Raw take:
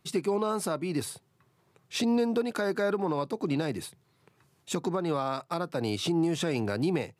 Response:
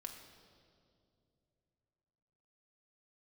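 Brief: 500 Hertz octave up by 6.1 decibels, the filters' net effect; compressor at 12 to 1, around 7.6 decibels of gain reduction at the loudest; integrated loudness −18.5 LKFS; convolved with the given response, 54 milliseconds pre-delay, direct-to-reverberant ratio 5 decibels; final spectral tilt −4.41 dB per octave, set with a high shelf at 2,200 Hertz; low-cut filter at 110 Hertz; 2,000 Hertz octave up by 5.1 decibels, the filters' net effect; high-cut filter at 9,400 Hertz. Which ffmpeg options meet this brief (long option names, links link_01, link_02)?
-filter_complex "[0:a]highpass=110,lowpass=9400,equalizer=frequency=500:width_type=o:gain=7.5,equalizer=frequency=2000:width_type=o:gain=8.5,highshelf=frequency=2200:gain=-3.5,acompressor=threshold=-25dB:ratio=12,asplit=2[link_01][link_02];[1:a]atrim=start_sample=2205,adelay=54[link_03];[link_02][link_03]afir=irnorm=-1:irlink=0,volume=-1dB[link_04];[link_01][link_04]amix=inputs=2:normalize=0,volume=11dB"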